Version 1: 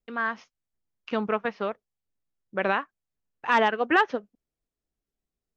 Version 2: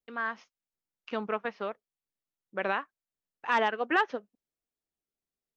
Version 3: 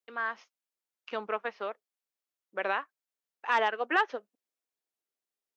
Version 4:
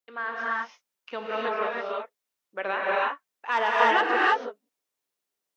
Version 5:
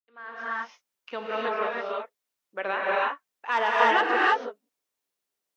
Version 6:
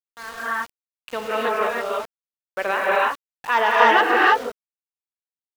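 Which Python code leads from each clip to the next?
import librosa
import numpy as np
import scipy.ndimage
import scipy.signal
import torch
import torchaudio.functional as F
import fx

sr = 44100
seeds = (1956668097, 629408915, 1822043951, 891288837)

y1 = fx.low_shelf(x, sr, hz=130.0, db=-12.0)
y1 = y1 * 10.0 ** (-4.5 / 20.0)
y2 = scipy.signal.sosfilt(scipy.signal.butter(2, 370.0, 'highpass', fs=sr, output='sos'), y1)
y3 = fx.rev_gated(y2, sr, seeds[0], gate_ms=350, shape='rising', drr_db=-6.0)
y4 = fx.fade_in_head(y3, sr, length_s=0.73)
y5 = np.where(np.abs(y4) >= 10.0 ** (-41.0 / 20.0), y4, 0.0)
y5 = y5 * 10.0 ** (6.0 / 20.0)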